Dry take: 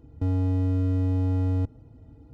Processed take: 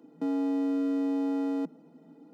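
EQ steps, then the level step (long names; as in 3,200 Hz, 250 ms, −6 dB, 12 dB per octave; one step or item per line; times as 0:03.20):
Chebyshev high-pass filter 160 Hz, order 8
+2.5 dB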